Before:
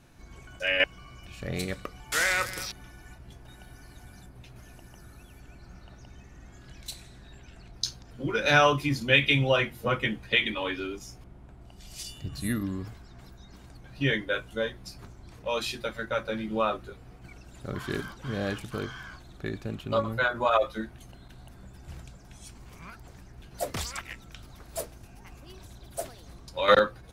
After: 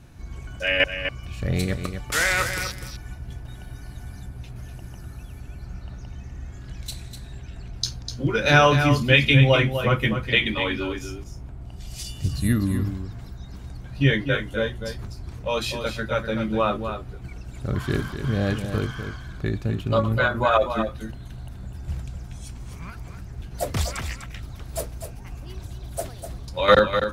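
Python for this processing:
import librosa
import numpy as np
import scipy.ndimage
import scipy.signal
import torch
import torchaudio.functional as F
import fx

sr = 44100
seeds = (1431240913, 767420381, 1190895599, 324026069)

p1 = fx.peak_eq(x, sr, hz=67.0, db=10.5, octaves=2.7)
p2 = p1 + fx.echo_single(p1, sr, ms=249, db=-8.5, dry=0)
y = p2 * librosa.db_to_amplitude(3.5)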